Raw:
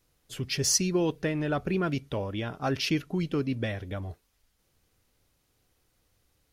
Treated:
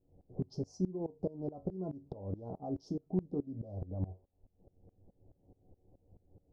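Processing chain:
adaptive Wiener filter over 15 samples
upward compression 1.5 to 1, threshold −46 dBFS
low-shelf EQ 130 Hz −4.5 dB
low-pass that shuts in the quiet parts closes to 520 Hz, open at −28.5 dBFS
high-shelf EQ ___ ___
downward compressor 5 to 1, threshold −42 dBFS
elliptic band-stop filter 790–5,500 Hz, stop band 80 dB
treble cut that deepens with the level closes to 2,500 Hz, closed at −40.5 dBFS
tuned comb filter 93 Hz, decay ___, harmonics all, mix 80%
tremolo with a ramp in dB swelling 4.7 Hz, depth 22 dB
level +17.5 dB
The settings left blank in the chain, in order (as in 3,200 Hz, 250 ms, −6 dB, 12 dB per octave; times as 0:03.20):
4,400 Hz, −11.5 dB, 0.16 s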